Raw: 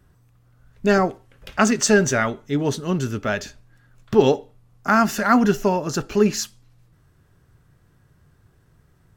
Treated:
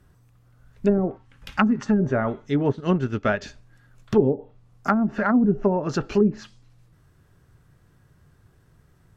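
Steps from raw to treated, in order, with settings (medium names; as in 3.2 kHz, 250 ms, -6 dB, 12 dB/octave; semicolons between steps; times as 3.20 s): 1.17–1.99 s: time-frequency box 320–760 Hz -9 dB; low-pass that closes with the level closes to 350 Hz, closed at -13 dBFS; 2.69–3.42 s: transient shaper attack +4 dB, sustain -8 dB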